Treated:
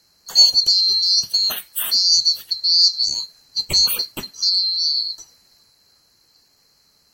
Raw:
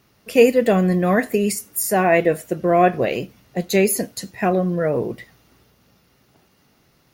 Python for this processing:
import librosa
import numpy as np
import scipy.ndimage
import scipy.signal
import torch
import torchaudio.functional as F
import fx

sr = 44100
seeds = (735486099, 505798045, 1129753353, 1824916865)

y = fx.band_swap(x, sr, width_hz=4000)
y = fx.low_shelf(y, sr, hz=320.0, db=7.0)